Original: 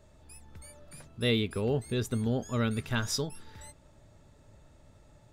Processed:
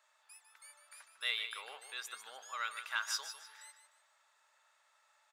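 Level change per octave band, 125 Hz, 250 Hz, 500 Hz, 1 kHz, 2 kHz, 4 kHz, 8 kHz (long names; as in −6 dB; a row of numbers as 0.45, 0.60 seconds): below −40 dB, below −40 dB, −25.5 dB, −2.5 dB, −0.5 dB, −3.5 dB, −4.5 dB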